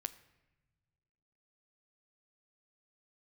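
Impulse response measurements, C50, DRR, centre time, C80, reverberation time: 16.0 dB, 12.0 dB, 4 ms, 18.0 dB, non-exponential decay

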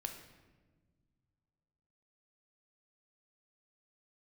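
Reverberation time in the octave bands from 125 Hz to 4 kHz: 2.9, 2.4, 1.7, 1.2, 1.1, 0.85 seconds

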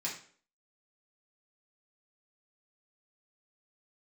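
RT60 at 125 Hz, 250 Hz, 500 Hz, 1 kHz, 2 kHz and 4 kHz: 0.45, 0.50, 0.50, 0.45, 0.45, 0.40 seconds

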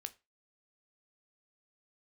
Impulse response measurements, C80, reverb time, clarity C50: 27.0 dB, 0.25 s, 21.0 dB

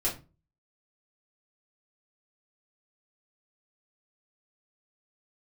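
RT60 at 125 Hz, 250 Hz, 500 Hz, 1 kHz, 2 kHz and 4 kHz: 0.50, 0.40, 0.30, 0.30, 0.25, 0.20 seconds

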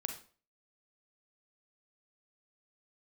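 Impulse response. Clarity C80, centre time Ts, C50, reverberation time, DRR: 13.0 dB, 16 ms, 7.5 dB, 0.40 s, 5.0 dB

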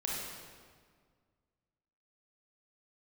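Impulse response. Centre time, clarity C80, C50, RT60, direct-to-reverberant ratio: 105 ms, 1.0 dB, −2.0 dB, 1.8 s, −4.5 dB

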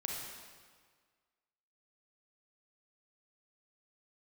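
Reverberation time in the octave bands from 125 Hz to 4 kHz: 1.6, 1.6, 1.6, 1.7, 1.5, 1.4 seconds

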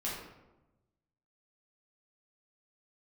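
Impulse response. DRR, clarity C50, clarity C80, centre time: −7.0 dB, 1.0 dB, 4.5 dB, 59 ms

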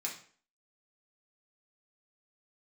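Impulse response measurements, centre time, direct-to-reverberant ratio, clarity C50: 23 ms, −3.0 dB, 7.5 dB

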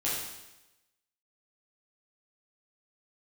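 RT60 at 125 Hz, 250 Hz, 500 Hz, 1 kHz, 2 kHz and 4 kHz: 0.95, 1.0, 1.0, 1.0, 1.0, 1.0 seconds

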